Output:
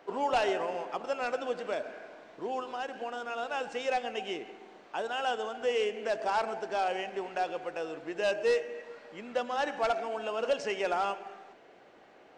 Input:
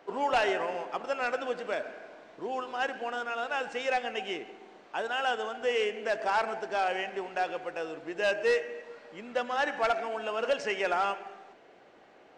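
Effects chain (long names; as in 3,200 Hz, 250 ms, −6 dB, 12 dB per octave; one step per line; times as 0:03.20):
dynamic equaliser 1,800 Hz, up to −6 dB, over −43 dBFS, Q 1.2
0:02.62–0:03.24: downward compressor, threshold −32 dBFS, peak gain reduction 5 dB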